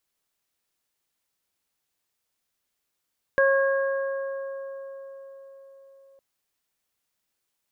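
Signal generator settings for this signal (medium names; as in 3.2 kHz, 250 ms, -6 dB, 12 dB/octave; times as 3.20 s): additive tone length 2.81 s, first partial 545 Hz, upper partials -10/-3 dB, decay 4.81 s, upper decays 3.65/2.60 s, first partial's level -17.5 dB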